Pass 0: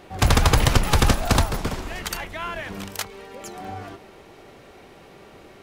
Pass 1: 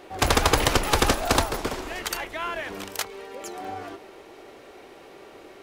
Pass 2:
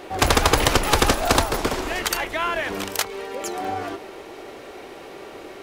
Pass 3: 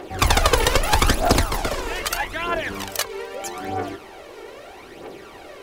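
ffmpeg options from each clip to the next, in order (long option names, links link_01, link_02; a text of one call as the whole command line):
ffmpeg -i in.wav -af "lowshelf=frequency=240:width_type=q:width=1.5:gain=-8" out.wav
ffmpeg -i in.wav -af "acompressor=threshold=-29dB:ratio=1.5,volume=7.5dB" out.wav
ffmpeg -i in.wav -af "aphaser=in_gain=1:out_gain=1:delay=2.3:decay=0.57:speed=0.79:type=triangular,volume=-2dB" out.wav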